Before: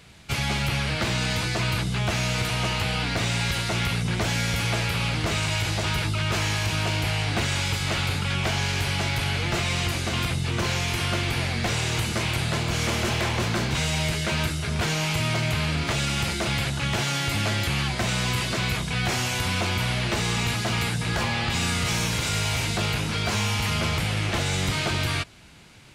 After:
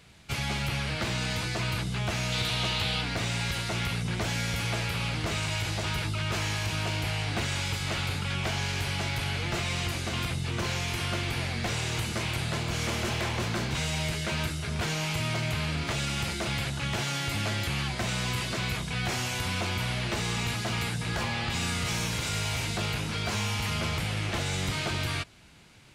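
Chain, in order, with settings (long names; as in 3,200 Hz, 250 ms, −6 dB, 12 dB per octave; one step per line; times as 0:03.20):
0:02.32–0:03.01: parametric band 3,700 Hz +9.5 dB 0.55 octaves
level −5 dB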